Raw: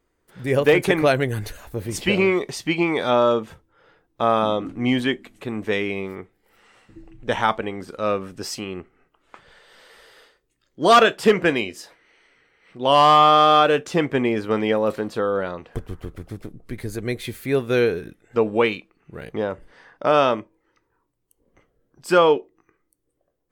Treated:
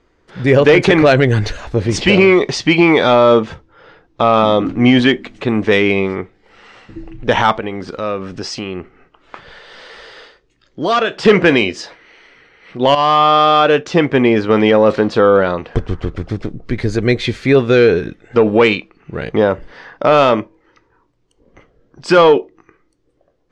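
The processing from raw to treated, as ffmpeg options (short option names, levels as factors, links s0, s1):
-filter_complex "[0:a]asettb=1/sr,asplit=3[s0][s1][s2];[s0]atrim=end=7.524[s3];[s1]atrim=start=7.52:end=11.25,asetpts=PTS-STARTPTS,afade=t=in:d=0.004:c=qsin,afade=t=out:st=3.726:d=0.004:c=qsin,acompressor=threshold=0.0141:ratio=2:attack=3.2:release=140:knee=1:detection=peak[s4];[s2]atrim=start=11.246[s5];[s3][s4]acrossfade=d=0.004:c1=hsin:c2=qsin[s6];[s6][s5]acrossfade=d=0.004:c1=qsin:c2=hsin,asplit=2[s7][s8];[s7]atrim=end=12.95,asetpts=PTS-STARTPTS,afade=t=out:st=12.946:d=0.004:c=hsin:silence=0.211349[s9];[s8]atrim=start=12.95,asetpts=PTS-STARTPTS,afade=t=in:d=2.09:silence=0.211349[s10];[s9][s10]concat=n=2:v=0:a=1,lowpass=f=5900:w=0.5412,lowpass=f=5900:w=1.3066,acontrast=75,alimiter=level_in=2.24:limit=0.891:release=50:level=0:latency=1,volume=0.891"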